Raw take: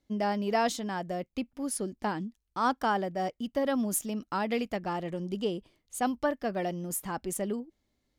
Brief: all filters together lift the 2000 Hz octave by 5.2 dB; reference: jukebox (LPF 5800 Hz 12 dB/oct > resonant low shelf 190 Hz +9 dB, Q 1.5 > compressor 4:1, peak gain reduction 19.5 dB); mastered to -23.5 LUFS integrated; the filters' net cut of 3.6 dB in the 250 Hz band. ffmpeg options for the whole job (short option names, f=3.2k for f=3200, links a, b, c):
-af "lowpass=5.8k,lowshelf=f=190:t=q:w=1.5:g=9,equalizer=f=250:t=o:g=-7,equalizer=f=2k:t=o:g=7,acompressor=threshold=-45dB:ratio=4,volume=23dB"